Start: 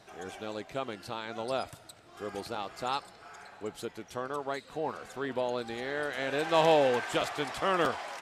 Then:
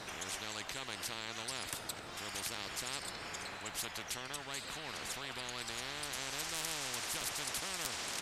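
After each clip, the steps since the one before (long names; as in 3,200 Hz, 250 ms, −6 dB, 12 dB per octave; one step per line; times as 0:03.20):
every bin compressed towards the loudest bin 10 to 1
level −3.5 dB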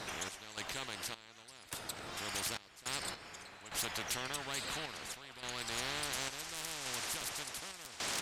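sample-and-hold tremolo, depth 90%
gain into a clipping stage and back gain 33.5 dB
level +4 dB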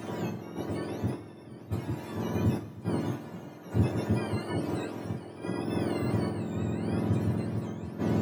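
frequency axis turned over on the octave scale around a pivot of 1,100 Hz
coupled-rooms reverb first 0.29 s, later 1.9 s, from −19 dB, DRR 0 dB
level +2.5 dB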